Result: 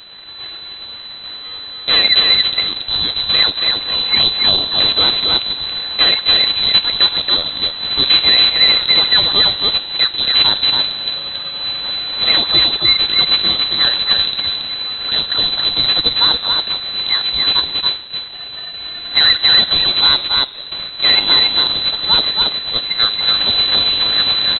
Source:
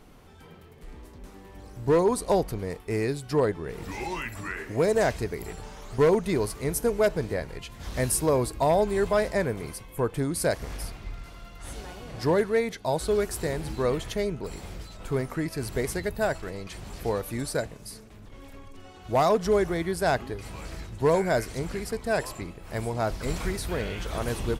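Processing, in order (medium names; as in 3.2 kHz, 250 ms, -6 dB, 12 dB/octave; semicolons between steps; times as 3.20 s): rattle on loud lows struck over -29 dBFS, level -26 dBFS; 20.17–20.72 s: expander -28 dBFS; Chebyshev high-pass 920 Hz, order 10; in parallel at -2 dB: compression, threshold -49 dBFS, peak gain reduction 23.5 dB; on the sum: full-wave rectifier; delay 278 ms -4 dB; on a send at -12 dB: reverberation RT60 1.2 s, pre-delay 3 ms; on the sum: frequency inversion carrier 4 kHz; loudness maximiser +19.5 dB; trim -1 dB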